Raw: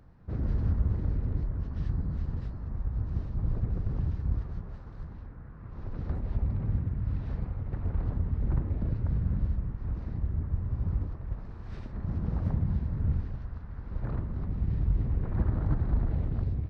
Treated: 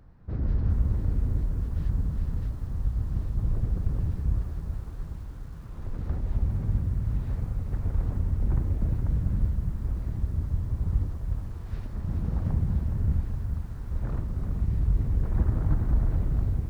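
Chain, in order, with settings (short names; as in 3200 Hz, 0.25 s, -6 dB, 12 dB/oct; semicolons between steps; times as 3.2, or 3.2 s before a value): low shelf 62 Hz +5.5 dB; lo-fi delay 0.416 s, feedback 55%, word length 9-bit, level -9 dB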